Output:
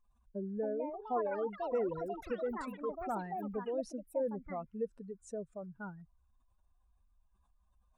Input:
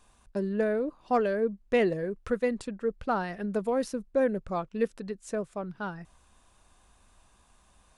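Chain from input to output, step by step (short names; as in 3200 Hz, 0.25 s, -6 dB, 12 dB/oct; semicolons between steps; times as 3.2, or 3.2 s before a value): spectral contrast raised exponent 2; echoes that change speed 0.379 s, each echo +6 st, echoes 3, each echo -6 dB; gain -9 dB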